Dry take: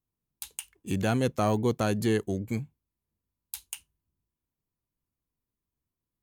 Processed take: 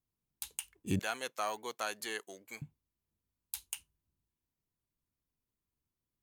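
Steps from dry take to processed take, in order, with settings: 0.99–2.62 HPF 970 Hz 12 dB/oct; gain -2.5 dB

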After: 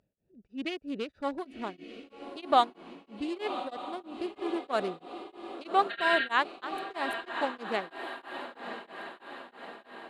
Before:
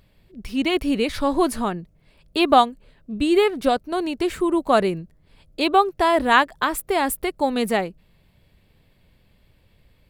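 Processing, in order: Wiener smoothing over 41 samples; LPF 8100 Hz 12 dB/oct; spectral repair 5.93–6.28, 1300–4700 Hz after; HPF 480 Hz 6 dB/oct; on a send: diffused feedback echo 1.085 s, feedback 56%, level -9 dB; on the sum: beating tremolo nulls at 3.1 Hz; gain -6 dB

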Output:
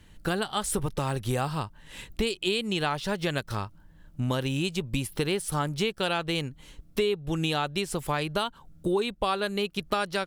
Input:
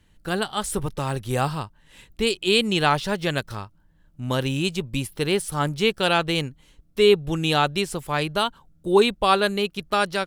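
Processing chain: compressor 6:1, threshold -31 dBFS, peak gain reduction 18 dB; gain +6 dB

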